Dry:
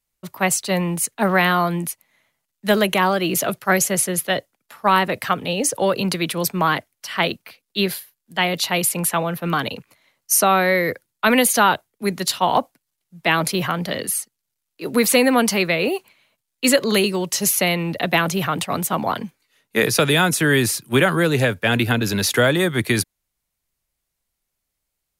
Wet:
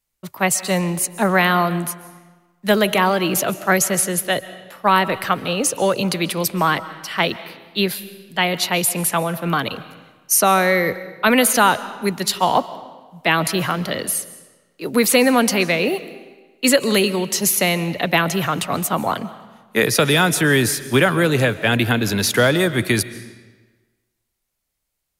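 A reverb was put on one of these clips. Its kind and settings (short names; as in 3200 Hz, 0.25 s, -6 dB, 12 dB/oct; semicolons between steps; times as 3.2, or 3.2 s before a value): digital reverb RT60 1.3 s, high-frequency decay 0.85×, pre-delay 0.1 s, DRR 15 dB; gain +1 dB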